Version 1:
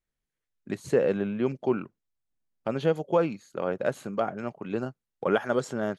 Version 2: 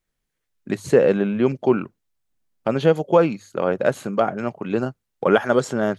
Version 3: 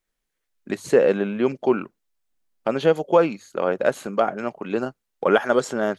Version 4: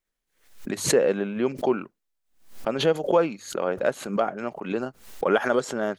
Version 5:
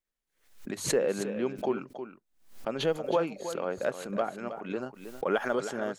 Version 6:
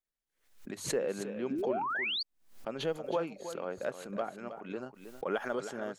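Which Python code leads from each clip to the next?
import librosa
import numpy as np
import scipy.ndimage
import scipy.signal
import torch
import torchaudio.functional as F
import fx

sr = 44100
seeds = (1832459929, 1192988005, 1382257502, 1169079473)

y1 = fx.hum_notches(x, sr, base_hz=50, count=2)
y1 = F.gain(torch.from_numpy(y1), 8.0).numpy()
y2 = fx.peak_eq(y1, sr, hz=93.0, db=-13.0, octaves=1.7)
y3 = fx.pre_swell(y2, sr, db_per_s=120.0)
y3 = F.gain(torch.from_numpy(y3), -4.0).numpy()
y4 = y3 + 10.0 ** (-10.5 / 20.0) * np.pad(y3, (int(318 * sr / 1000.0), 0))[:len(y3)]
y4 = F.gain(torch.from_numpy(y4), -6.5).numpy()
y5 = fx.spec_paint(y4, sr, seeds[0], shape='rise', start_s=1.5, length_s=0.73, low_hz=240.0, high_hz=4800.0, level_db=-28.0)
y5 = F.gain(torch.from_numpy(y5), -5.5).numpy()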